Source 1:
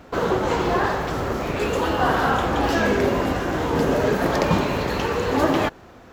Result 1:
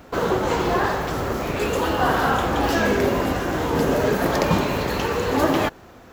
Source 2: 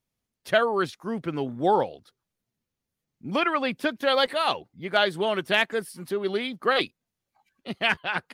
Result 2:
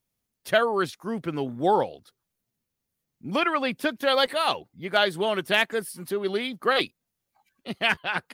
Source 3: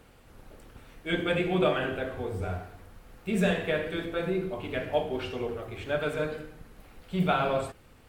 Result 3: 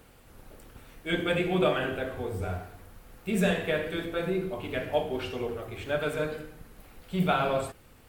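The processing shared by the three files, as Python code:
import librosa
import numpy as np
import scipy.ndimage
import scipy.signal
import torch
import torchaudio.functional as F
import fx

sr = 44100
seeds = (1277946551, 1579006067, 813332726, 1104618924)

y = fx.high_shelf(x, sr, hz=9400.0, db=9.0)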